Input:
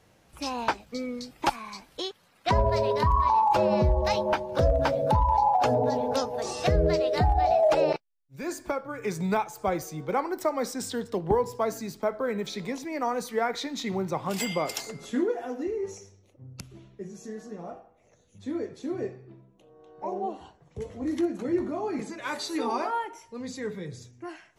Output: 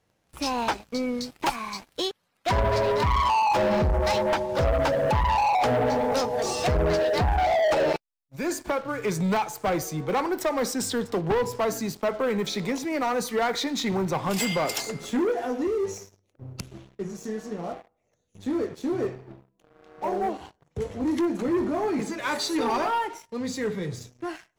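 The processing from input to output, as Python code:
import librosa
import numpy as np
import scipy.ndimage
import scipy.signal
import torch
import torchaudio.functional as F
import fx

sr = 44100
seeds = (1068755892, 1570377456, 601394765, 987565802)

y = fx.leveller(x, sr, passes=3)
y = F.gain(torch.from_numpy(y), -5.0).numpy()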